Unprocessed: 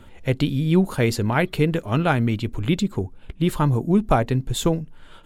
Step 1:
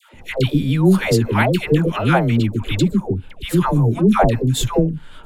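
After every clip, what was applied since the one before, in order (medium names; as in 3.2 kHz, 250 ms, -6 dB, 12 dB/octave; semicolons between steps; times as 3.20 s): phase dispersion lows, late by 139 ms, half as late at 740 Hz; trim +4.5 dB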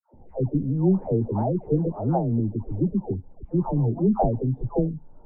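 Chebyshev low-pass 840 Hz, order 4; trim -6.5 dB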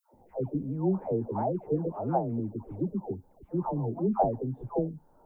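tilt EQ +3.5 dB/octave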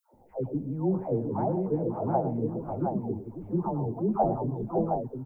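multi-tap echo 103/121/549/716 ms -12.5/-19.5/-11/-4.5 dB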